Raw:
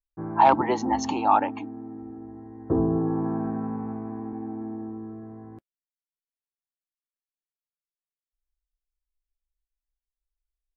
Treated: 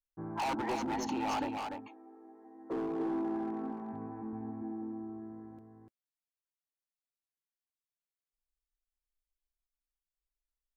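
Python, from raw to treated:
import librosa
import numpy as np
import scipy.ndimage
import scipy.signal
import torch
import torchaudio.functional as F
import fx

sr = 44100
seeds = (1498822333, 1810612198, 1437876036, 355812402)

y = fx.highpass(x, sr, hz=fx.line((1.57, 490.0), (3.92, 170.0)), slope=24, at=(1.57, 3.92), fade=0.02)
y = np.clip(y, -10.0 ** (-23.5 / 20.0), 10.0 ** (-23.5 / 20.0))
y = y + 10.0 ** (-5.0 / 20.0) * np.pad(y, (int(294 * sr / 1000.0), 0))[:len(y)]
y = y * 10.0 ** (-8.0 / 20.0)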